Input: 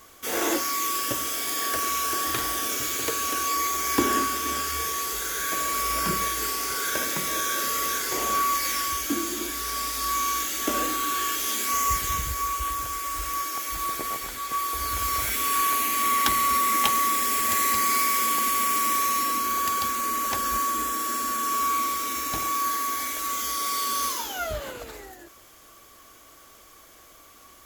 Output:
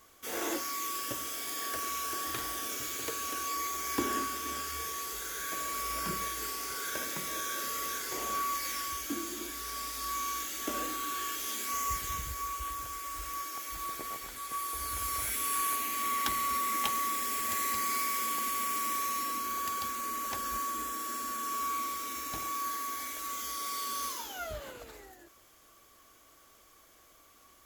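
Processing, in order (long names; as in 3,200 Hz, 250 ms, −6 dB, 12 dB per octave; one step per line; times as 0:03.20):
0:14.36–0:15.76: parametric band 10,000 Hz +7.5 dB 0.44 octaves
level −9 dB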